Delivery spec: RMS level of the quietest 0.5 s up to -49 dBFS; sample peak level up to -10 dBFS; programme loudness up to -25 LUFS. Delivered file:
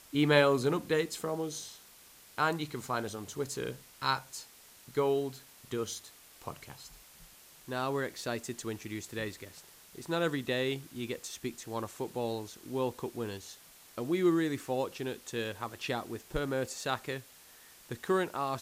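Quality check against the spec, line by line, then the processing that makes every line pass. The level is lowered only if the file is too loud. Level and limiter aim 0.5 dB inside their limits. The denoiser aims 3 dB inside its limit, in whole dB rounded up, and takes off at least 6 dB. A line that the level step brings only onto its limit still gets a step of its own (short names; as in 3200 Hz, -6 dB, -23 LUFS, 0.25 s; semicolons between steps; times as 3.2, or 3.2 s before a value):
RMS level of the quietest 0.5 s -57 dBFS: OK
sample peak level -12.0 dBFS: OK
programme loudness -34.0 LUFS: OK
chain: none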